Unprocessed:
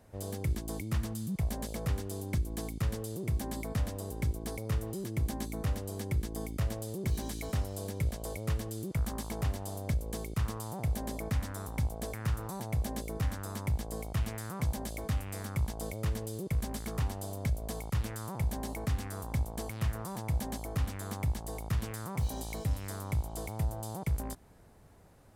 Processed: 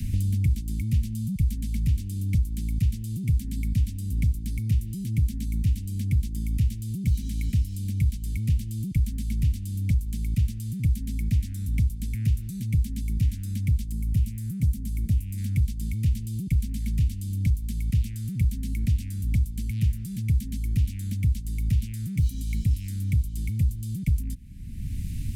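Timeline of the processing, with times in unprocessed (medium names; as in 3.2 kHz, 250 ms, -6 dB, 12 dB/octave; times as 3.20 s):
13.92–15.38 s: peaking EQ 3 kHz -8.5 dB 2.8 oct
whole clip: elliptic band-stop 240–2400 Hz, stop band 60 dB; bass shelf 130 Hz +12 dB; three bands compressed up and down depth 100%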